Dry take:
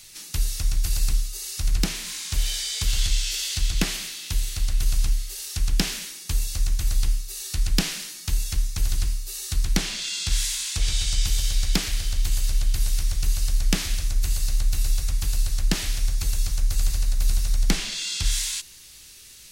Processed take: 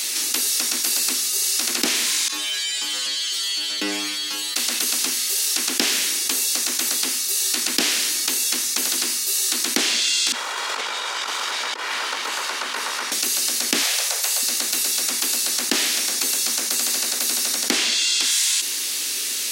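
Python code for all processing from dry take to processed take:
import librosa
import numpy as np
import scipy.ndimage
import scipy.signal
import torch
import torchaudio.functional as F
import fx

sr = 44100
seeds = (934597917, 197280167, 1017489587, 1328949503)

y = fx.chain(x, sr, fx.high_shelf(hz=4700.0, db=-9.5),
    fx.stiff_resonator(f0_hz=100.0, decay_s=0.63, stiffness=0.002), at=(2.28, 4.56))
y = fx.chain(y, sr, fx.lower_of_two(delay_ms=2.1),
    fx.bandpass_q(hz=1100.0, q=1.8),
    fx.over_compress(threshold_db=-48.0, ratio=-0.5), at=(10.32, 13.12))
y = fx.chain(y, sr, fx.steep_highpass(hz=430.0, slope=72),
    fx.peak_eq(hz=750.0, db=5.5, octaves=1.1), at=(13.82, 14.43))
y = scipy.signal.sosfilt(scipy.signal.cheby1(5, 1.0, 240.0, 'highpass', fs=sr, output='sos'), y)
y = fx.env_flatten(y, sr, amount_pct=70)
y = y * 10.0 ** (3.5 / 20.0)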